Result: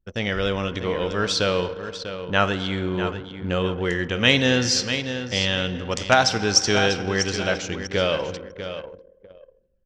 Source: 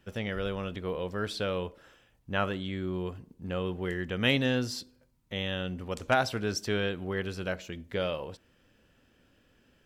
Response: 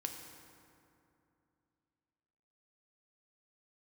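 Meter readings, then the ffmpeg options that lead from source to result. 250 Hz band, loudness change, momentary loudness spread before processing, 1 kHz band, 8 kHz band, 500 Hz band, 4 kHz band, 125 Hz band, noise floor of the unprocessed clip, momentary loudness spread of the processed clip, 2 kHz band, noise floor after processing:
+7.5 dB, +10.0 dB, 11 LU, +10.0 dB, +18.5 dB, +9.0 dB, +13.5 dB, +7.5 dB, -67 dBFS, 14 LU, +10.5 dB, -58 dBFS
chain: -filter_complex "[0:a]aecho=1:1:645|1290|1935:0.299|0.0866|0.0251,asplit=2[a][b];[1:a]atrim=start_sample=2205,lowshelf=f=450:g=-9[c];[b][c]afir=irnorm=-1:irlink=0,volume=-0.5dB[d];[a][d]amix=inputs=2:normalize=0,anlmdn=0.158,lowpass=f=6.2k:t=q:w=2.9,dynaudnorm=f=120:g=3:m=4dB,volume=1.5dB"

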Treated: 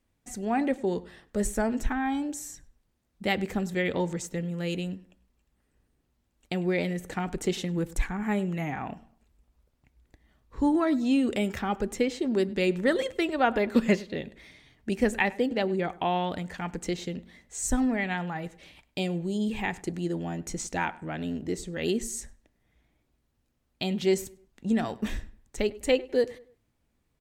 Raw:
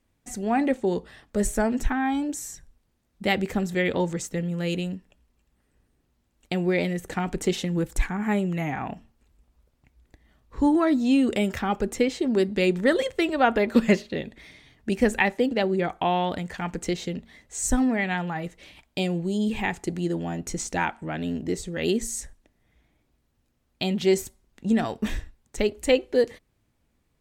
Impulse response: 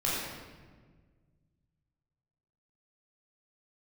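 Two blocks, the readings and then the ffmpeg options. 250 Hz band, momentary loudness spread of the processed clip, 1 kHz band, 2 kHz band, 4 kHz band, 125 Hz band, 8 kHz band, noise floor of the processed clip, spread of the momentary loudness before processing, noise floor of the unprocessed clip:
-3.5 dB, 12 LU, -3.5 dB, -3.5 dB, -3.5 dB, -3.5 dB, -3.5 dB, -74 dBFS, 12 LU, -71 dBFS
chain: -filter_complex "[0:a]asplit=2[a][b];[b]adelay=101,lowpass=f=2.4k:p=1,volume=-20dB,asplit=2[c][d];[d]adelay=101,lowpass=f=2.4k:p=1,volume=0.37,asplit=2[e][f];[f]adelay=101,lowpass=f=2.4k:p=1,volume=0.37[g];[a][c][e][g]amix=inputs=4:normalize=0,volume=-3.5dB"

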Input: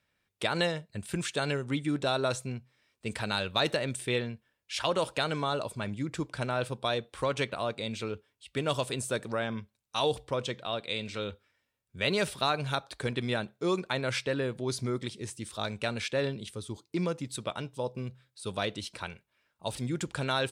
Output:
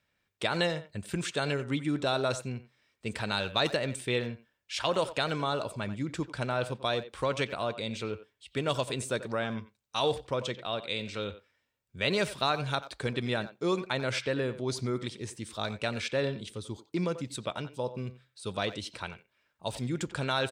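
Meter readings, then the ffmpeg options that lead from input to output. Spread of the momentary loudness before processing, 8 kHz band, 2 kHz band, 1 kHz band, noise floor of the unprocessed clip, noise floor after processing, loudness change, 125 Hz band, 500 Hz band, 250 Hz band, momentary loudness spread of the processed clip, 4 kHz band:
10 LU, -1.5 dB, 0.0 dB, 0.0 dB, -81 dBFS, -78 dBFS, 0.0 dB, 0.0 dB, 0.0 dB, 0.0 dB, 11 LU, 0.0 dB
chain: -filter_complex "[0:a]equalizer=f=11k:w=2.9:g=-9.5,asplit=2[a][b];[b]adelay=90,highpass=300,lowpass=3.4k,asoftclip=type=hard:threshold=-22.5dB,volume=-13dB[c];[a][c]amix=inputs=2:normalize=0"

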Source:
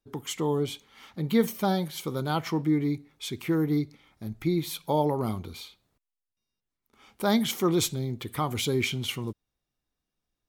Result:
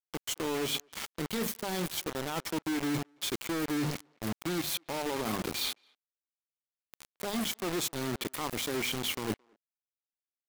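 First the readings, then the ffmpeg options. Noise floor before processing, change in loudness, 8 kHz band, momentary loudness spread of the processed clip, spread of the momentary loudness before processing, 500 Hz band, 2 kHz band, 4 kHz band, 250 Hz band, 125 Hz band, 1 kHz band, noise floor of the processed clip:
under -85 dBFS, -5.0 dB, +0.5 dB, 5 LU, 13 LU, -6.5 dB, -0.5 dB, 0.0 dB, -7.0 dB, -10.0 dB, -5.5 dB, under -85 dBFS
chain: -filter_complex "[0:a]lowshelf=f=92:g=-6,bandreject=f=50:t=h:w=6,bandreject=f=100:t=h:w=6,bandreject=f=150:t=h:w=6,bandreject=f=200:t=h:w=6,bandreject=f=250:t=h:w=6,acrossover=split=170[a][b];[b]dynaudnorm=f=180:g=3:m=14.5dB[c];[a][c]amix=inputs=2:normalize=0,alimiter=limit=-11.5dB:level=0:latency=1:release=211,areverse,acompressor=threshold=-33dB:ratio=12,areverse,acrusher=bits=5:mix=0:aa=0.000001,asplit=2[d][e];[e]adelay=220,highpass=300,lowpass=3.4k,asoftclip=type=hard:threshold=-34dB,volume=-28dB[f];[d][f]amix=inputs=2:normalize=0,volume=2dB"

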